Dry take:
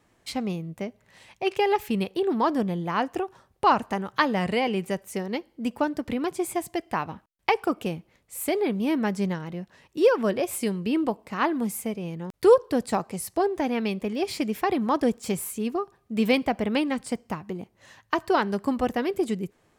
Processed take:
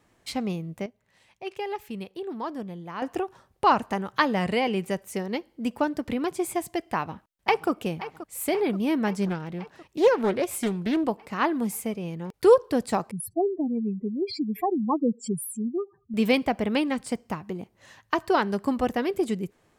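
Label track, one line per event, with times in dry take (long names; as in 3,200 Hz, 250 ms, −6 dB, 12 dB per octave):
0.860000	3.020000	clip gain −9.5 dB
6.930000	7.700000	delay throw 530 ms, feedback 70%, level −14 dB
9.250000	11.040000	highs frequency-modulated by the lows depth 0.3 ms
13.110000	16.140000	expanding power law on the bin magnitudes exponent 3.7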